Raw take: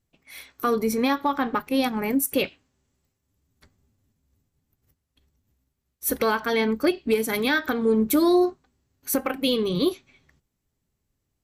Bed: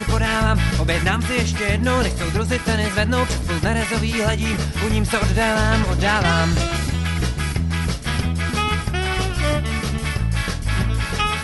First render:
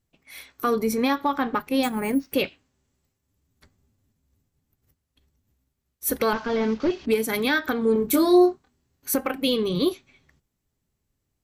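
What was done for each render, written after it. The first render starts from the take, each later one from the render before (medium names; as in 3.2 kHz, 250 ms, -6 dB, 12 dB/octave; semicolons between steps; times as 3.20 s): 1.83–2.33 s: careless resampling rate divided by 4×, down filtered, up hold; 6.33–7.06 s: one-bit delta coder 32 kbps, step -40 dBFS; 7.93–9.14 s: doubling 25 ms -5 dB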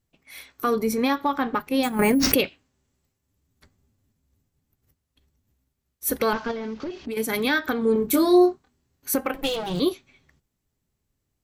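1.99–2.41 s: level flattener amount 100%; 6.51–7.17 s: compression, threshold -28 dBFS; 9.34–9.80 s: comb filter that takes the minimum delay 6.1 ms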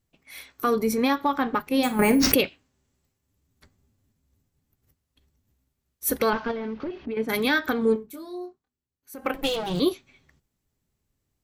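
1.72–2.22 s: flutter echo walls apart 8.8 m, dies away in 0.25 s; 6.29–7.28 s: low-pass 4.4 kHz -> 1.9 kHz; 7.93–9.25 s: dip -20 dB, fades 0.34 s exponential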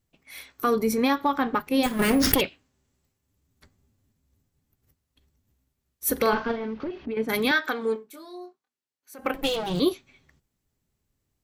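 1.86–2.41 s: comb filter that takes the minimum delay 0.59 ms; 6.13–6.64 s: doubling 43 ms -7.5 dB; 7.51–9.19 s: frequency weighting A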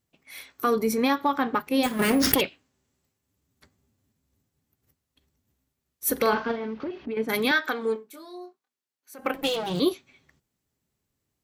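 high-pass 120 Hz 6 dB/octave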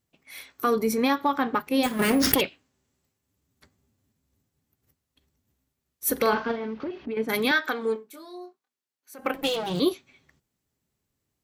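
no audible change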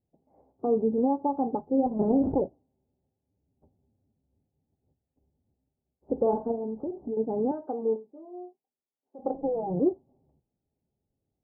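Chebyshev low-pass 830 Hz, order 5; hum notches 60/120 Hz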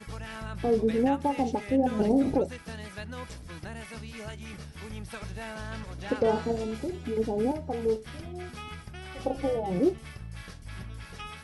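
add bed -20.5 dB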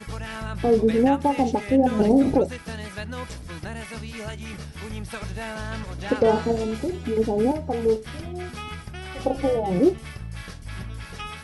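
trim +6 dB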